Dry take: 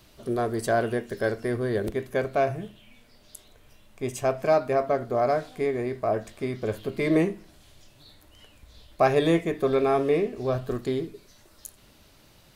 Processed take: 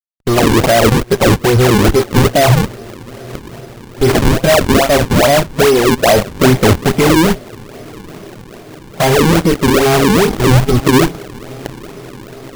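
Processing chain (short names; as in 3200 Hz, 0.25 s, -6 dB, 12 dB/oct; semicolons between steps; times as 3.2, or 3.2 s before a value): soft clip -25.5 dBFS, distortion -8 dB; spectral gain 4.09–4.3, 240–9700 Hz +9 dB; fuzz box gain 43 dB, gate -36 dBFS; on a send: diffused feedback echo 0.975 s, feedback 71%, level -15.5 dB; on the sum: spectral noise reduction 10 dB; low shelf 170 Hz +9 dB; in parallel at +3 dB: limiter -14 dBFS, peak gain reduction 8.5 dB; on the sum: decimation with a swept rate 39×, swing 160% 2.4 Hz; vocal rider within 3 dB 0.5 s; gain +1 dB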